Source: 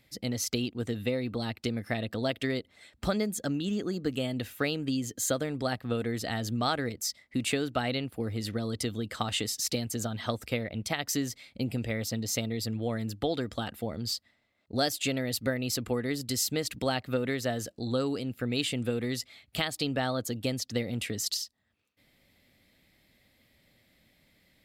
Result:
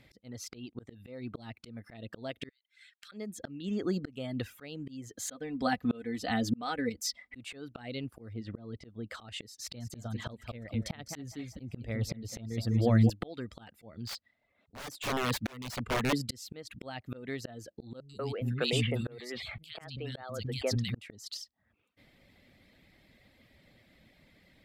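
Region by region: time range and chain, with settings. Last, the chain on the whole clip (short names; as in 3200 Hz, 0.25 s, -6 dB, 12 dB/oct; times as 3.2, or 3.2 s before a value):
2.49–3.12 elliptic high-pass 1500 Hz, stop band 50 dB + compressor 20:1, threshold -50 dBFS
5.25–7.36 notch 520 Hz, Q 17 + comb 4 ms, depth 63%
8.33–9.08 LPF 4700 Hz + high shelf 2100 Hz -11.5 dB
9.6–13.1 low shelf 160 Hz +10.5 dB + feedback echo 0.203 s, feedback 26%, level -9.5 dB
14.07–16.13 wrapped overs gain 25.5 dB + notch 340 Hz, Q 7.6
18–20.95 bell 280 Hz -9.5 dB 0.44 oct + three bands offset in time lows, highs, mids 90/190 ms, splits 260/2600 Hz + sustainer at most 38 dB/s
whole clip: LPF 2800 Hz 6 dB/oct; reverb removal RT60 0.52 s; auto swell 0.653 s; gain +6 dB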